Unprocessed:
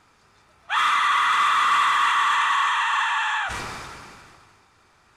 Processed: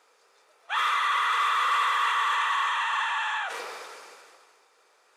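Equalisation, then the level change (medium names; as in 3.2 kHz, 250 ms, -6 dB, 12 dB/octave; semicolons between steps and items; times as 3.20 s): dynamic bell 7.8 kHz, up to -6 dB, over -47 dBFS, Q 0.98; resonant high-pass 480 Hz, resonance Q 4.9; tilt EQ +2 dB/octave; -7.0 dB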